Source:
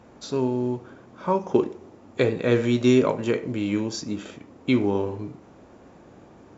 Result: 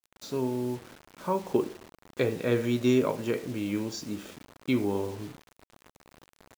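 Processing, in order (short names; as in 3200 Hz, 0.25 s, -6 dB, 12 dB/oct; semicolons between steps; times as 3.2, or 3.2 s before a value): bit-crush 7-bit; gain -5.5 dB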